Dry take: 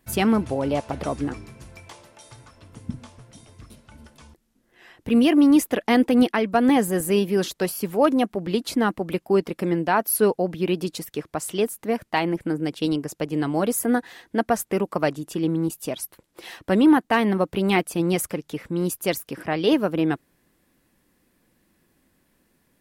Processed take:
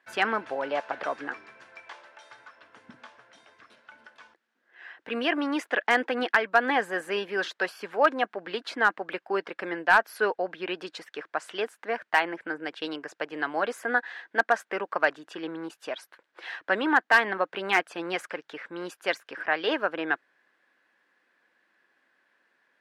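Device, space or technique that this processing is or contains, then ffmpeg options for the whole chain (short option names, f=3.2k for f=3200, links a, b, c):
megaphone: -af "highpass=650,lowpass=3.3k,equalizer=f=1.6k:t=o:w=0.4:g=10,asoftclip=type=hard:threshold=-10.5dB"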